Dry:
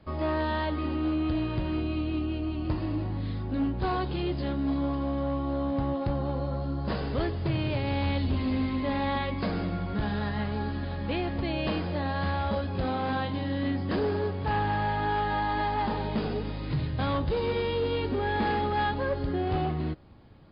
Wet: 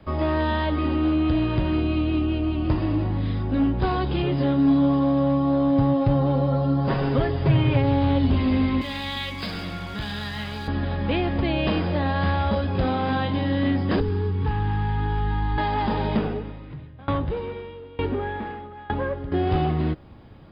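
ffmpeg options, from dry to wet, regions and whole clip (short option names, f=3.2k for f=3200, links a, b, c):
-filter_complex "[0:a]asettb=1/sr,asplit=3[a][b][c];[a]atrim=end=4.224[d];[b]atrim=start=4.22:end=8.31,asetpts=PTS-STARTPTS,afade=t=in:d=0.004:c=qsin,afade=t=out:st=4.086:d=0.004:c=qsin,acrossover=split=2900[e][f];[f]acompressor=threshold=-52dB:ratio=4:attack=1:release=60[g];[e][g]amix=inputs=2:normalize=0,aecho=1:1:7.4:0.77,atrim=end_sample=180369[h];[c]atrim=start=8.306[i];[d][h]acrossfade=d=0.004:c1=hsin:c2=qsin[j];[j][i]acrossfade=d=0.004:c1=qsin:c2=hsin,asettb=1/sr,asplit=3[k][l][m];[k]atrim=end=8.814[n];[l]atrim=start=8.81:end=10.68,asetpts=PTS-STARTPTS,afade=t=in:d=0.004:c=qsin,afade=t=out:st=1.866:d=0.004:c=qsin,tiltshelf=f=830:g=-8,acrossover=split=250|3000[o][p][q];[p]acompressor=threshold=-41dB:ratio=4:attack=3.2:release=140:knee=2.83:detection=peak[r];[o][r][q]amix=inputs=3:normalize=0,aeval=exprs='sgn(val(0))*max(abs(val(0))-0.002,0)':c=same[s];[m]atrim=start=10.676[t];[n][s]acrossfade=d=0.004:c1=hsin:c2=qsin[u];[u][t]acrossfade=d=0.004:c1=qsin:c2=hsin,asettb=1/sr,asplit=3[v][w][x];[v]atrim=end=14.004[y];[w]atrim=start=14:end=15.58,asetpts=PTS-STARTPTS,afade=t=in:d=0.004:c=qsin,afade=t=out:st=1.576:d=0.004:c=qsin,acrossover=split=210|3000[z][aa][ab];[z]acompressor=threshold=-42dB:ratio=4[ac];[aa]acompressor=threshold=-39dB:ratio=4[ad];[ab]acompressor=threshold=-52dB:ratio=4[ae];[ac][ad][ae]amix=inputs=3:normalize=0,asuperstop=centerf=640:order=20:qfactor=2.2,aemphasis=mode=reproduction:type=bsi[af];[x]atrim=start=15.576[ag];[y][af]acrossfade=d=0.004:c1=hsin:c2=qsin[ah];[ah][ag]acrossfade=d=0.004:c1=qsin:c2=hsin,asettb=1/sr,asplit=3[ai][aj][ak];[ai]atrim=end=16.174[al];[aj]atrim=start=16.17:end=19.32,asetpts=PTS-STARTPTS,afade=t=in:d=0.004:c=qsin,afade=t=out:st=3.146:d=0.004:c=qsin,lowpass=2.8k,aeval=exprs='val(0)*pow(10,-24*if(lt(mod(1.1*n/s,1),2*abs(1.1)/1000),1-mod(1.1*n/s,1)/(2*abs(1.1)/1000),(mod(1.1*n/s,1)-2*abs(1.1)/1000)/(1-2*abs(1.1)/1000))/20)':c=same[am];[ak]atrim=start=19.316[an];[al][am]acrossfade=d=0.004:c1=hsin:c2=qsin[ao];[ao][an]acrossfade=d=0.004:c1=qsin:c2=hsin,bandreject=f=4.3k:w=8,acrossover=split=300|3000[ap][aq][ar];[aq]acompressor=threshold=-30dB:ratio=6[as];[ap][as][ar]amix=inputs=3:normalize=0,volume=7dB"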